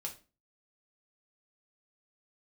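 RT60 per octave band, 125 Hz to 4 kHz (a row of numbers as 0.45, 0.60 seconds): 0.40, 0.45, 0.35, 0.30, 0.30, 0.30 seconds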